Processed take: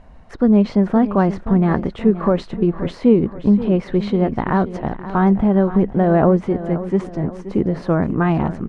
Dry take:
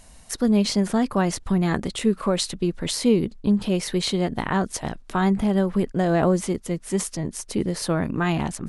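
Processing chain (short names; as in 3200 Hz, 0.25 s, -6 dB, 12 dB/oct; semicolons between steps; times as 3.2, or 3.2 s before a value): LPF 1400 Hz 12 dB/oct; on a send: feedback echo 0.526 s, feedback 45%, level -13.5 dB; on the sum: gain +6 dB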